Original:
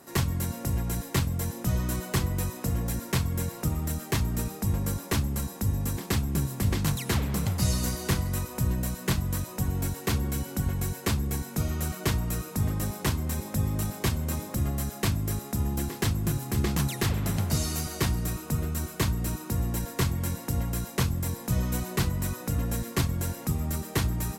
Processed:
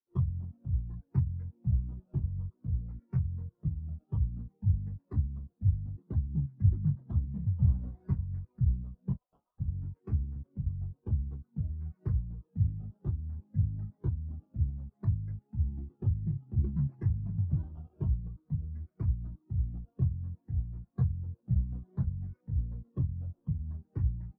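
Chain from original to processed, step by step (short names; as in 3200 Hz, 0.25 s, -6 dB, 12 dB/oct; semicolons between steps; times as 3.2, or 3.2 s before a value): 9.17–9.6 steep high-pass 730 Hz 36 dB/oct; decimation with a swept rate 17×, swing 60% 0.57 Hz; spectral expander 2.5:1; gain -1.5 dB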